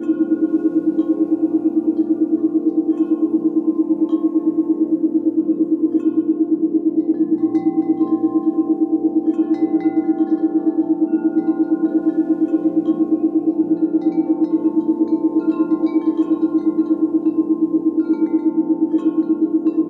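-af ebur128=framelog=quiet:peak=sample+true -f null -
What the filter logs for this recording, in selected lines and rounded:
Integrated loudness:
  I:         -17.9 LUFS
  Threshold: -27.9 LUFS
Loudness range:
  LRA:         0.1 LU
  Threshold: -37.9 LUFS
  LRA low:   -18.0 LUFS
  LRA high:  -17.8 LUFS
Sample peak:
  Peak:       -6.2 dBFS
True peak:
  Peak:       -6.2 dBFS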